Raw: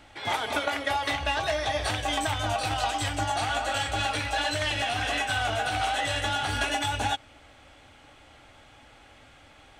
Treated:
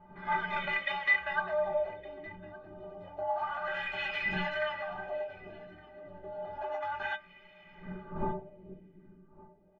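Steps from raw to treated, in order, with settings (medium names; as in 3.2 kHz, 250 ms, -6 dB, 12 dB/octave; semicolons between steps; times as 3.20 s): wind noise 220 Hz -32 dBFS; low-pass 4.9 kHz 12 dB/octave; tilt shelf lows -5.5 dB, about 770 Hz; inharmonic resonator 180 Hz, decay 0.26 s, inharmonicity 0.03; de-hum 149.2 Hz, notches 12; LFO low-pass sine 0.3 Hz 310–2400 Hz; delay 1164 ms -22.5 dB; trim +1.5 dB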